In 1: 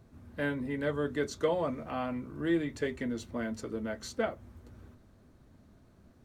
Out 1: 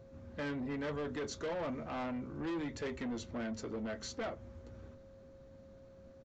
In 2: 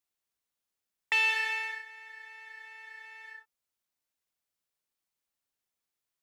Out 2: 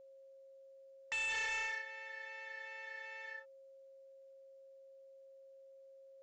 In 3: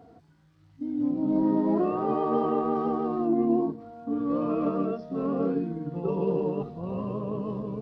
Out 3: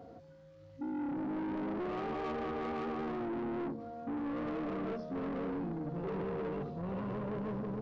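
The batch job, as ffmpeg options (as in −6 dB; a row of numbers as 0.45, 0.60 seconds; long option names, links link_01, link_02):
-af "alimiter=limit=-23dB:level=0:latency=1:release=16,aresample=16000,asoftclip=type=tanh:threshold=-34.5dB,aresample=44100,aeval=exprs='val(0)+0.00158*sin(2*PI*540*n/s)':channel_layout=same"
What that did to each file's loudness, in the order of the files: −6.0, −12.0, −10.0 LU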